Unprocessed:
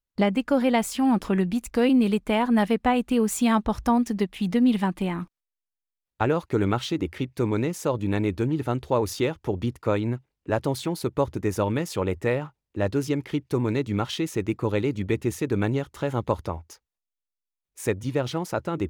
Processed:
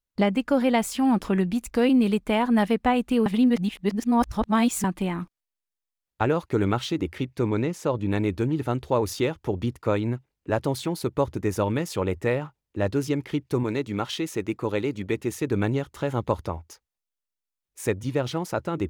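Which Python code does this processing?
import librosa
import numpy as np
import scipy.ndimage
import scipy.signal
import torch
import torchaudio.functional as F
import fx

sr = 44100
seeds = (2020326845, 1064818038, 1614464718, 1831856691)

y = fx.high_shelf(x, sr, hz=fx.line((7.34, 9800.0), (8.1, 5900.0)), db=-10.0, at=(7.34, 8.1), fade=0.02)
y = fx.low_shelf(y, sr, hz=140.0, db=-9.5, at=(13.63, 15.42))
y = fx.edit(y, sr, fx.reverse_span(start_s=3.26, length_s=1.58), tone=tone)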